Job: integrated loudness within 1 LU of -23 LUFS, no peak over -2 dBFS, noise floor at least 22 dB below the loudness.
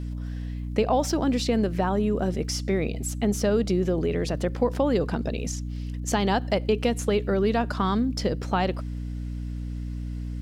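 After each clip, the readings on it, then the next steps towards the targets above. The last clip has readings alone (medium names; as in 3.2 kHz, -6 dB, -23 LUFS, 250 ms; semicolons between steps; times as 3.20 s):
tick rate 29 per s; hum 60 Hz; highest harmonic 300 Hz; hum level -29 dBFS; loudness -26.5 LUFS; peak level -10.5 dBFS; loudness target -23.0 LUFS
-> de-click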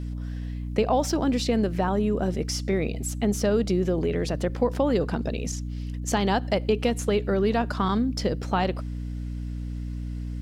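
tick rate 0.38 per s; hum 60 Hz; highest harmonic 300 Hz; hum level -29 dBFS
-> de-hum 60 Hz, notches 5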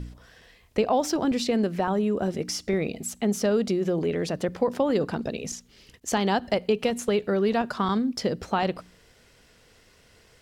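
hum not found; loudness -26.0 LUFS; peak level -12.0 dBFS; loudness target -23.0 LUFS
-> trim +3 dB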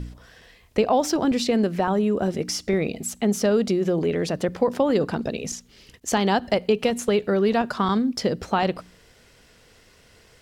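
loudness -23.0 LUFS; peak level -9.0 dBFS; noise floor -55 dBFS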